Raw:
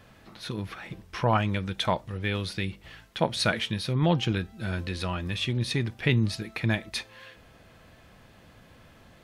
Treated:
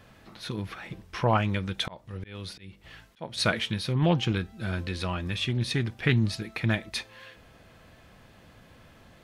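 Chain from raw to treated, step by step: 1.8–3.38 auto swell 0.387 s; Doppler distortion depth 0.18 ms

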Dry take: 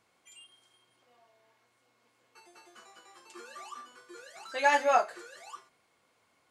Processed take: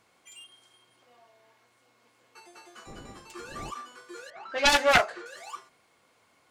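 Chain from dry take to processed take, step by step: self-modulated delay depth 0.44 ms; 2.86–3.7 wind noise 350 Hz -51 dBFS; 4.3–5.26 low-pass opened by the level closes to 1800 Hz, open at -21.5 dBFS; gain +5.5 dB

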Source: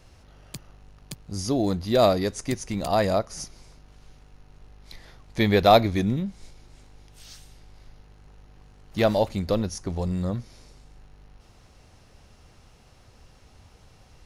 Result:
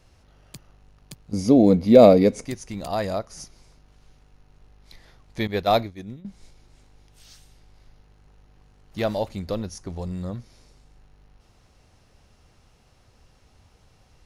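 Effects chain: 1.33–2.45 small resonant body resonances 240/470/2200 Hz, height 17 dB, ringing for 25 ms; 5.47–6.25 expander -15 dBFS; gain -4 dB

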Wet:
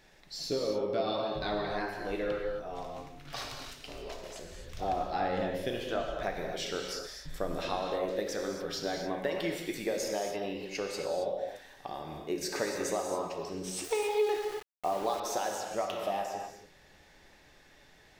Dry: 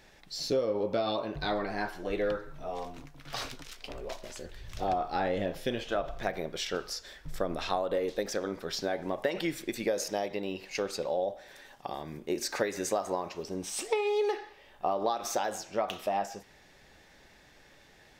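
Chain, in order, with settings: non-linear reverb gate 0.3 s flat, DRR 1.5 dB; 13.84–15.2 sample gate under -36.5 dBFS; gain -3.5 dB

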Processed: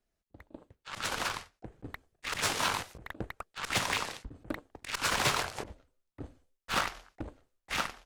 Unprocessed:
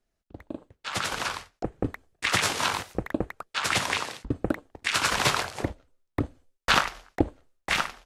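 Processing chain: hard clip -17.5 dBFS, distortion -12 dB; auto swell 0.11 s; added harmonics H 6 -19 dB, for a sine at -17.5 dBFS; gain -3.5 dB

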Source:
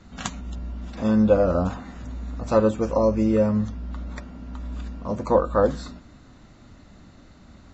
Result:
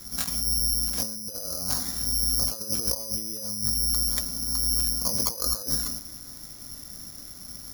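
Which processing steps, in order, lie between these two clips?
high shelf 3600 Hz +11 dB; negative-ratio compressor -30 dBFS, ratio -1; careless resampling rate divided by 8×, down filtered, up zero stuff; gain -7.5 dB

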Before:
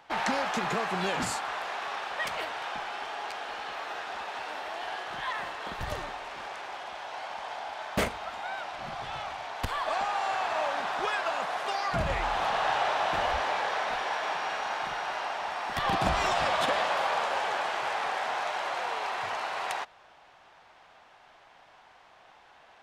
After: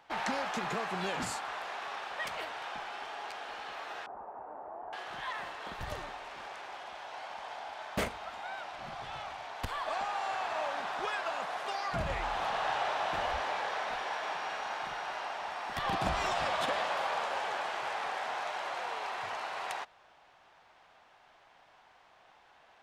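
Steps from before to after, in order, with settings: 4.06–4.93 LPF 1000 Hz 24 dB/oct; gain -5 dB

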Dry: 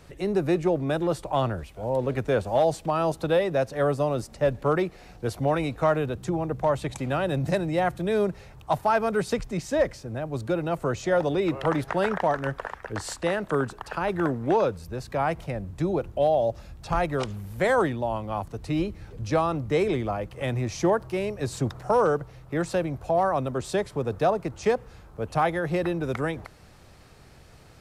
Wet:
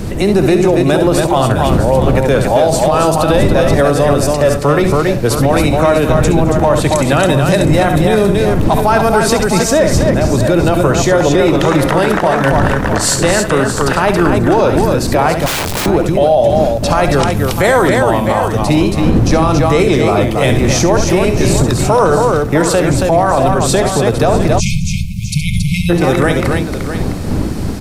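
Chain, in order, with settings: wind noise 210 Hz -33 dBFS; high shelf 4500 Hz +9 dB; in parallel at +1 dB: compressor, threshold -29 dBFS, peak gain reduction 13.5 dB; on the sum: tapped delay 66/69/212/276/655/714 ms -18/-9.5/-19.5/-5/-11.5/-19.5 dB; 15.46–15.86 wrapped overs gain 23.5 dB; on a send at -15.5 dB: reverb RT60 0.50 s, pre-delay 3 ms; 24.59–25.9 on the sum: spectral delete 210–2100 Hz; maximiser +12 dB; gain -1 dB

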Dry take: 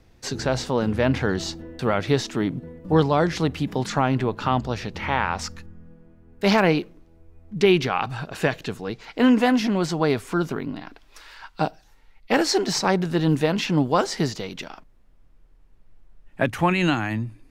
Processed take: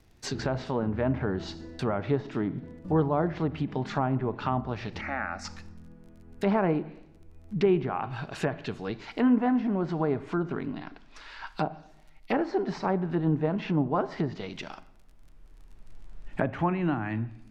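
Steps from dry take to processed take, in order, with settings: recorder AGC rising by 7 dB/s; 14.25–14.66 high shelf 4600 Hz -6 dB; reverb RT60 0.85 s, pre-delay 32 ms, DRR 16 dB; crackle 36/s -42 dBFS; 5.01–5.45 fixed phaser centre 650 Hz, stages 8; 10.67–11.47 air absorption 96 m; notch 510 Hz, Q 12; treble ducked by the level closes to 1200 Hz, closed at -18 dBFS; gain -5.5 dB

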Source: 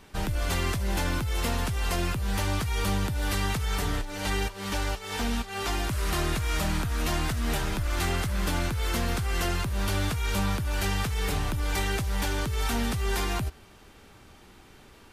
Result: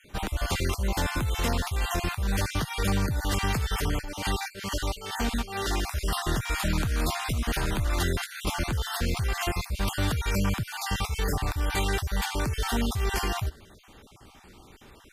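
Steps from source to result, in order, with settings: random spectral dropouts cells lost 32%; added harmonics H 4 -33 dB, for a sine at -16.5 dBFS; gain +2 dB

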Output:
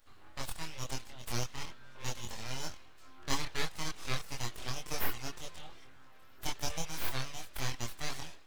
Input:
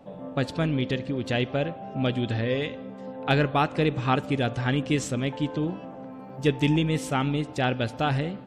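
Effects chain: differentiator; full-wave rectifier; chorus voices 6, 0.4 Hz, delay 24 ms, depth 2 ms; gain +9 dB

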